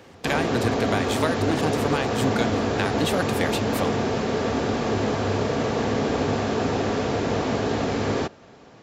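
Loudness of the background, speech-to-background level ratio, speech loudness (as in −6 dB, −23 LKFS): −24.5 LKFS, −4.0 dB, −28.5 LKFS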